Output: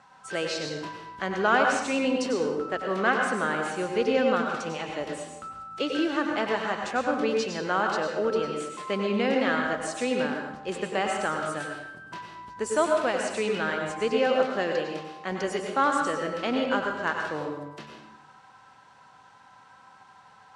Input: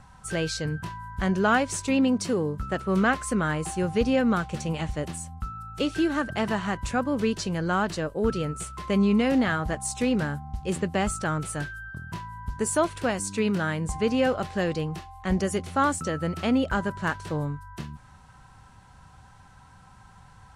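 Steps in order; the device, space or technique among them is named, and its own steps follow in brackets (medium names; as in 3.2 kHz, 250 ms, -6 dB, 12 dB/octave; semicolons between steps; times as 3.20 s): supermarket ceiling speaker (band-pass 350–5600 Hz; reverberation RT60 0.95 s, pre-delay 90 ms, DRR 2 dB)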